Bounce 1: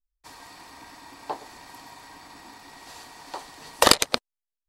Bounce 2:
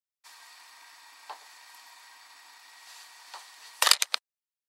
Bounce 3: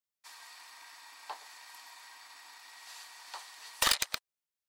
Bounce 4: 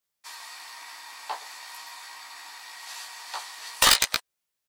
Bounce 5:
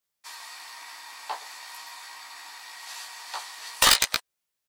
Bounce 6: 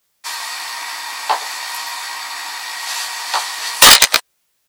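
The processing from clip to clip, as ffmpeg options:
ffmpeg -i in.wav -af "highpass=1300,volume=-2.5dB" out.wav
ffmpeg -i in.wav -af "aeval=exprs='(tanh(7.94*val(0)+0.1)-tanh(0.1))/7.94':channel_layout=same" out.wav
ffmpeg -i in.wav -filter_complex "[0:a]asplit=2[link_01][link_02];[link_02]adelay=16,volume=-2.5dB[link_03];[link_01][link_03]amix=inputs=2:normalize=0,volume=7.5dB" out.wav
ffmpeg -i in.wav -af anull out.wav
ffmpeg -i in.wav -af "apsyclip=17.5dB,volume=-1dB" out.wav

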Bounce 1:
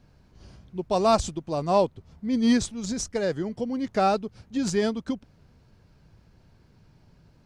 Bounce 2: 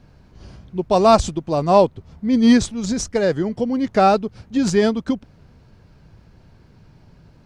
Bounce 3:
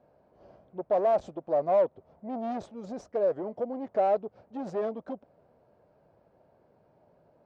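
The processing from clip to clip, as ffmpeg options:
ffmpeg -i in.wav -af "highshelf=frequency=5000:gain=-5.5,volume=8dB" out.wav
ffmpeg -i in.wav -af "asoftclip=type=tanh:threshold=-19dB,bandpass=frequency=610:width_type=q:width=3.1:csg=0,volume=1.5dB" out.wav

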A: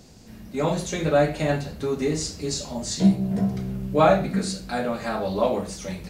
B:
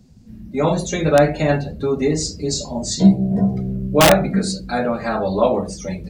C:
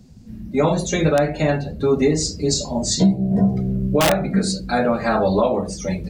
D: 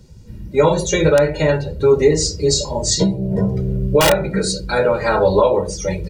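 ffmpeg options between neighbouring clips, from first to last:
ffmpeg -i in.wav -filter_complex "[0:a]afftdn=noise_reduction=17:noise_floor=-39,acrossover=split=550[link_01][link_02];[link_02]aeval=exprs='(mod(4.47*val(0)+1,2)-1)/4.47':channel_layout=same[link_03];[link_01][link_03]amix=inputs=2:normalize=0,volume=6dB" out.wav
ffmpeg -i in.wav -af "alimiter=limit=-10.5dB:level=0:latency=1:release=433,volume=3dB" out.wav
ffmpeg -i in.wav -af "aecho=1:1:2.1:0.73,volume=2dB" out.wav

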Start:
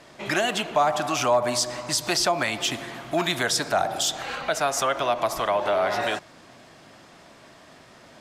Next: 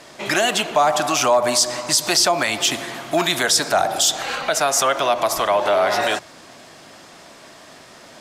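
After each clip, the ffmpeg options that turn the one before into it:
ffmpeg -i in.wav -filter_complex "[0:a]bass=frequency=250:gain=-4,treble=frequency=4000:gain=5,asplit=2[link_01][link_02];[link_02]alimiter=limit=-15.5dB:level=0:latency=1:release=22,volume=0dB[link_03];[link_01][link_03]amix=inputs=2:normalize=0,bandreject=frequency=60:width_type=h:width=6,bandreject=frequency=120:width_type=h:width=6" out.wav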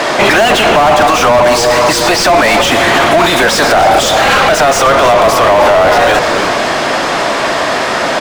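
ffmpeg -i in.wav -filter_complex "[0:a]asplit=2[link_01][link_02];[link_02]highpass=frequency=720:poles=1,volume=36dB,asoftclip=type=tanh:threshold=-4dB[link_03];[link_01][link_03]amix=inputs=2:normalize=0,lowpass=frequency=1300:poles=1,volume=-6dB,asplit=2[link_04][link_05];[link_05]asplit=3[link_06][link_07][link_08];[link_06]adelay=303,afreqshift=-130,volume=-12dB[link_09];[link_07]adelay=606,afreqshift=-260,volume=-22.2dB[link_10];[link_08]adelay=909,afreqshift=-390,volume=-32.3dB[link_11];[link_09][link_10][link_11]amix=inputs=3:normalize=0[link_12];[link_04][link_12]amix=inputs=2:normalize=0,alimiter=level_in=9dB:limit=-1dB:release=50:level=0:latency=1,volume=-1dB" out.wav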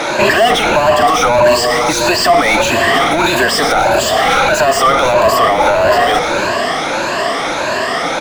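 ffmpeg -i in.wav -af "afftfilt=real='re*pow(10,12/40*sin(2*PI*(1.4*log(max(b,1)*sr/1024/100)/log(2)-(1.6)*(pts-256)/sr)))':imag='im*pow(10,12/40*sin(2*PI*(1.4*log(max(b,1)*sr/1024/100)/log(2)-(1.6)*(pts-256)/sr)))':win_size=1024:overlap=0.75,volume=-5dB" out.wav

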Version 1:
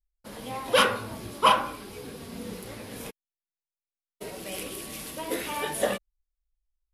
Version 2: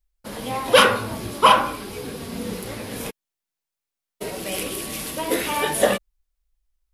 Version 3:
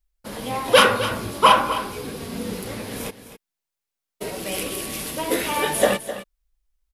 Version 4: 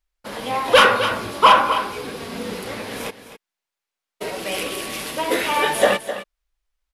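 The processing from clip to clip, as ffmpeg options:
ffmpeg -i in.wav -af "alimiter=level_in=9dB:limit=-1dB:release=50:level=0:latency=1,volume=-1dB" out.wav
ffmpeg -i in.wav -af "aecho=1:1:258:0.237" out.wav
ffmpeg -i in.wav -filter_complex "[0:a]asplit=2[link_01][link_02];[link_02]highpass=frequency=720:poles=1,volume=11dB,asoftclip=type=tanh:threshold=-1.5dB[link_03];[link_01][link_03]amix=inputs=2:normalize=0,lowpass=frequency=3100:poles=1,volume=-6dB" out.wav

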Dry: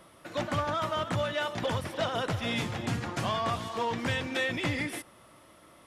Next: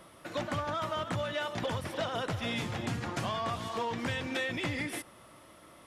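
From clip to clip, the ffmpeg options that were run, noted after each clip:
ffmpeg -i in.wav -af "acompressor=threshold=-33dB:ratio=2.5,volume=1dB" out.wav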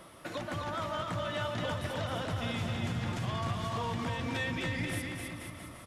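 ffmpeg -i in.wav -filter_complex "[0:a]asubboost=boost=3:cutoff=210,alimiter=level_in=6dB:limit=-24dB:level=0:latency=1:release=167,volume=-6dB,asplit=2[link_01][link_02];[link_02]aecho=0:1:260|481|668.8|828.5|964.2:0.631|0.398|0.251|0.158|0.1[link_03];[link_01][link_03]amix=inputs=2:normalize=0,volume=2dB" out.wav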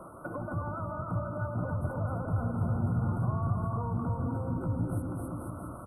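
ffmpeg -i in.wav -filter_complex "[0:a]afftfilt=real='re*(1-between(b*sr/4096,1500,8000))':imag='im*(1-between(b*sr/4096,1500,8000))':win_size=4096:overlap=0.75,highshelf=frequency=6000:width_type=q:width=3:gain=-7.5,acrossover=split=200[link_01][link_02];[link_02]acompressor=threshold=-43dB:ratio=6[link_03];[link_01][link_03]amix=inputs=2:normalize=0,volume=6.5dB" out.wav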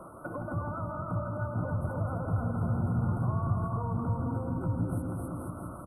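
ffmpeg -i in.wav -af "aecho=1:1:165:0.316" out.wav

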